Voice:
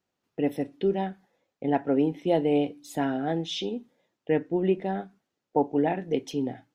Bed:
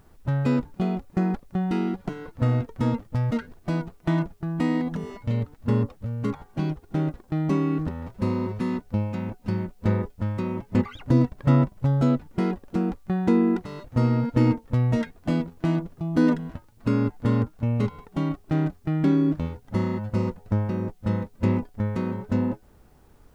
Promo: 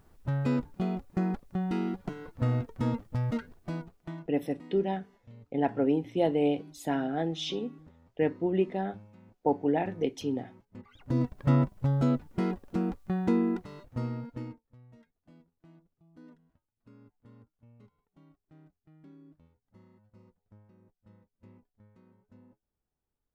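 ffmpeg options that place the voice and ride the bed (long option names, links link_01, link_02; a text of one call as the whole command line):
ffmpeg -i stem1.wav -i stem2.wav -filter_complex "[0:a]adelay=3900,volume=-2.5dB[link_01];[1:a]volume=15dB,afade=type=out:start_time=3.35:duration=0.94:silence=0.1,afade=type=in:start_time=10.83:duration=0.55:silence=0.0944061,afade=type=out:start_time=13.18:duration=1.46:silence=0.0375837[link_02];[link_01][link_02]amix=inputs=2:normalize=0" out.wav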